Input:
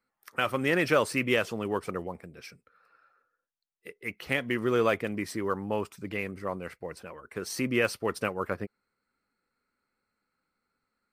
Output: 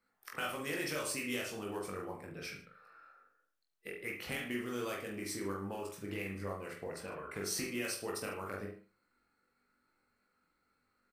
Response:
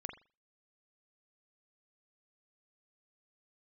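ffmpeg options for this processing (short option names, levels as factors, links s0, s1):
-filter_complex "[0:a]acrossover=split=4600[s0][s1];[s0]acompressor=threshold=0.00891:ratio=5[s2];[s2][s1]amix=inputs=2:normalize=0,aecho=1:1:20|44|72.8|107.4|148.8:0.631|0.398|0.251|0.158|0.1[s3];[1:a]atrim=start_sample=2205[s4];[s3][s4]afir=irnorm=-1:irlink=0,volume=1.5"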